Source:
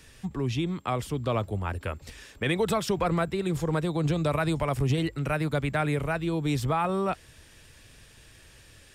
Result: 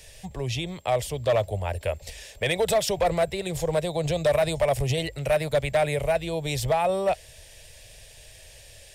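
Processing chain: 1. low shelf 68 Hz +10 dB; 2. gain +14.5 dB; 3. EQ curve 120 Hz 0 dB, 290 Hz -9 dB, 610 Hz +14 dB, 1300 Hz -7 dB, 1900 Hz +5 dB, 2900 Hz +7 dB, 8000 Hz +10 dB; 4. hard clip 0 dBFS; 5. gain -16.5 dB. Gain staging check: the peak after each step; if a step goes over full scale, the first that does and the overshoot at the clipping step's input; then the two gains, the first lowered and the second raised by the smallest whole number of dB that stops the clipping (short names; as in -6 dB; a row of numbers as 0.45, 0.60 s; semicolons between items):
-13.0, +1.5, +7.0, 0.0, -16.5 dBFS; step 2, 7.0 dB; step 2 +7.5 dB, step 5 -9.5 dB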